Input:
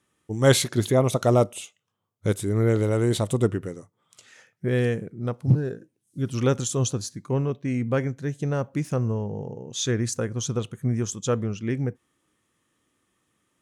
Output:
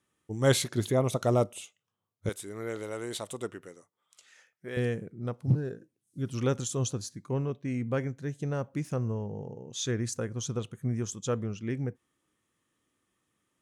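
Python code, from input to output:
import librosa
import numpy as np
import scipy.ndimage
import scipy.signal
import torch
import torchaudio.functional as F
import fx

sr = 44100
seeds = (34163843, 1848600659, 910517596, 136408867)

y = fx.highpass(x, sr, hz=820.0, slope=6, at=(2.29, 4.77))
y = y * librosa.db_to_amplitude(-6.0)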